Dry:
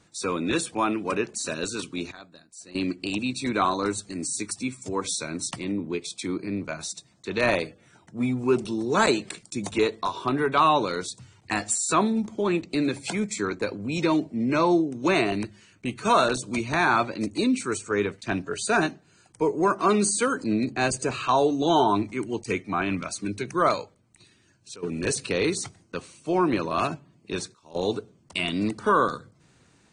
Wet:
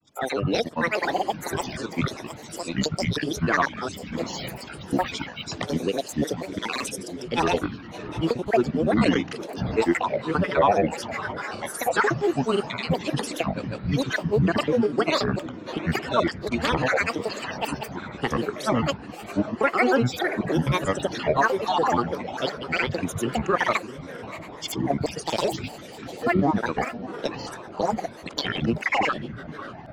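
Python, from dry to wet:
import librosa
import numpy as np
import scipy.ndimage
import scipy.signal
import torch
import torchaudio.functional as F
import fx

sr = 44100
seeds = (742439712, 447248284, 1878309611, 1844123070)

p1 = fx.spec_dropout(x, sr, seeds[0], share_pct=27)
p2 = fx.recorder_agc(p1, sr, target_db=-15.5, rise_db_per_s=15.0, max_gain_db=30)
p3 = np.sign(p2) * np.maximum(np.abs(p2) - 10.0 ** (-38.5 / 20.0), 0.0)
p4 = p2 + (p3 * 10.0 ** (-9.0 / 20.0))
p5 = fx.air_absorb(p4, sr, metres=110.0)
p6 = p5 + fx.echo_diffused(p5, sr, ms=677, feedback_pct=40, wet_db=-12, dry=0)
y = fx.granulator(p6, sr, seeds[1], grain_ms=100.0, per_s=20.0, spray_ms=100.0, spread_st=12)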